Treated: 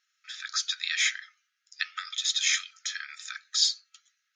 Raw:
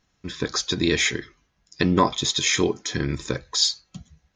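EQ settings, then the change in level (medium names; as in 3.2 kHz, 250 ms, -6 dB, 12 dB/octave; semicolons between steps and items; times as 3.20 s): brick-wall FIR high-pass 1.2 kHz; -3.0 dB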